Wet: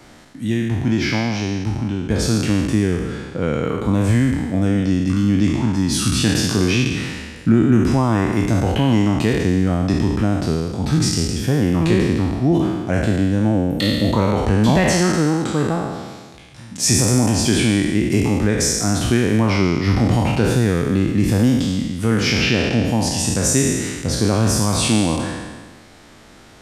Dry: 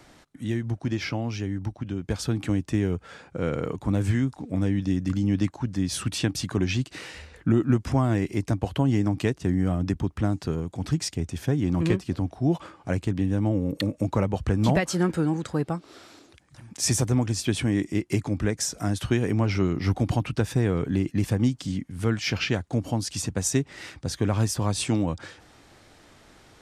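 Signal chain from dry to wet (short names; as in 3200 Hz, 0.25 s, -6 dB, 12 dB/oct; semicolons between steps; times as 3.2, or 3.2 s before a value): spectral trails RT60 1.47 s; bell 220 Hz +4.5 dB 0.32 oct; in parallel at -2 dB: limiter -13 dBFS, peak gain reduction 7.5 dB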